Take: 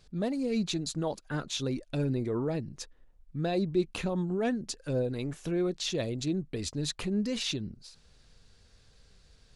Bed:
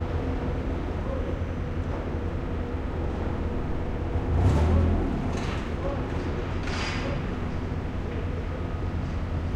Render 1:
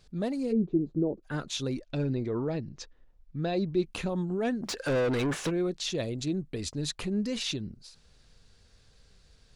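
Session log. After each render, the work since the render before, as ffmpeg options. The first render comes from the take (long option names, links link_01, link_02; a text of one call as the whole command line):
ffmpeg -i in.wav -filter_complex "[0:a]asplit=3[link_01][link_02][link_03];[link_01]afade=type=out:start_time=0.51:duration=0.02[link_04];[link_02]lowpass=frequency=380:width_type=q:width=3.1,afade=type=in:start_time=0.51:duration=0.02,afade=type=out:start_time=1.22:duration=0.02[link_05];[link_03]afade=type=in:start_time=1.22:duration=0.02[link_06];[link_04][link_05][link_06]amix=inputs=3:normalize=0,asettb=1/sr,asplit=3[link_07][link_08][link_09];[link_07]atrim=end=1.814[link_10];[link_08]atrim=start=1.81:end=3.84,asetpts=PTS-STARTPTS,afade=type=in:duration=0.004:curve=qsin,afade=type=out:start_time=2.026:duration=0.004:curve=qsin,lowpass=frequency=6300:width=0.5412,lowpass=frequency=6300:width=1.3066[link_11];[link_09]atrim=start=3.836[link_12];[link_10][link_11]acrossfade=duration=0.004:curve1=hsin:curve2=qsin[link_13];[link_13][link_12]acrossfade=duration=0.004:curve1=qsin:curve2=hsin,asplit=3[link_14][link_15][link_16];[link_14]afade=type=out:start_time=4.62:duration=0.02[link_17];[link_15]asplit=2[link_18][link_19];[link_19]highpass=frequency=720:poles=1,volume=30dB,asoftclip=type=tanh:threshold=-20.5dB[link_20];[link_18][link_20]amix=inputs=2:normalize=0,lowpass=frequency=2500:poles=1,volume=-6dB,afade=type=in:start_time=4.62:duration=0.02,afade=type=out:start_time=5.49:duration=0.02[link_21];[link_16]afade=type=in:start_time=5.49:duration=0.02[link_22];[link_17][link_21][link_22]amix=inputs=3:normalize=0" out.wav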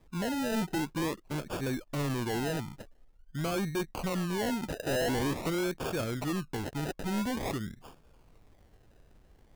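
ffmpeg -i in.wav -af "acrusher=samples=31:mix=1:aa=0.000001:lfo=1:lforange=18.6:lforate=0.47,asoftclip=type=hard:threshold=-28dB" out.wav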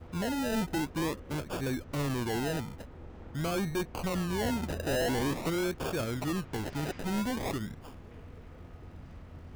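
ffmpeg -i in.wav -i bed.wav -filter_complex "[1:a]volume=-18.5dB[link_01];[0:a][link_01]amix=inputs=2:normalize=0" out.wav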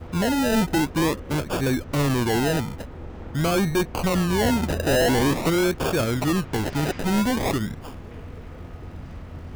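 ffmpeg -i in.wav -af "volume=10dB" out.wav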